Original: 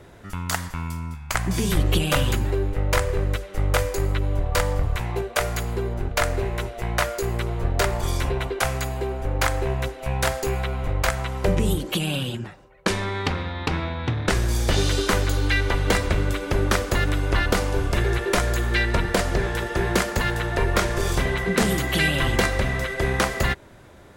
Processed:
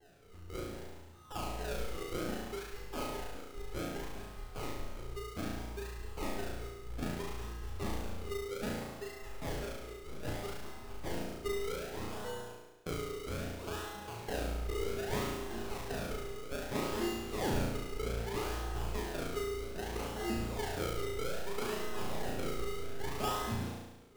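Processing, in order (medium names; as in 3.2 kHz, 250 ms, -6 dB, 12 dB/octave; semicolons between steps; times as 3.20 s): low-pass 4.8 kHz 12 dB/octave; feedback comb 420 Hz, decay 0.67 s, mix 100%; decimation with a swept rate 36×, swing 100% 0.63 Hz; on a send: flutter echo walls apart 6 m, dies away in 1 s; on the sum: trim +5.5 dB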